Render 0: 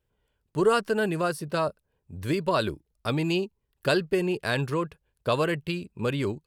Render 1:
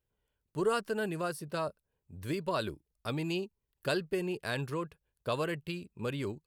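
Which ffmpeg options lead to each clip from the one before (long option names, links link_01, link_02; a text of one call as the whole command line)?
ffmpeg -i in.wav -af "highshelf=frequency=9900:gain=6,volume=-8dB" out.wav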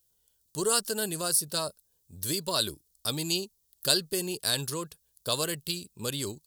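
ffmpeg -i in.wav -af "aexciter=amount=10.2:drive=3.5:freq=3500" out.wav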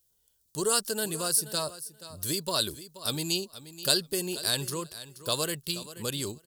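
ffmpeg -i in.wav -af "aecho=1:1:479|958:0.178|0.0267" out.wav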